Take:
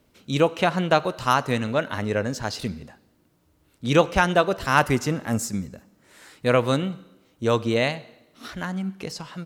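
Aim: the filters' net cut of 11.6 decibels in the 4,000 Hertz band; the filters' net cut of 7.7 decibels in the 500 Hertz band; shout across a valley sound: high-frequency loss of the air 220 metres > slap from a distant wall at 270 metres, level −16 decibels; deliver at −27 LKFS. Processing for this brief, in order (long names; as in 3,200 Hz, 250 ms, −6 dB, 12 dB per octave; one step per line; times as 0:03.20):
high-frequency loss of the air 220 metres
parametric band 500 Hz −8.5 dB
parametric band 4,000 Hz −9 dB
slap from a distant wall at 270 metres, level −16 dB
level +1 dB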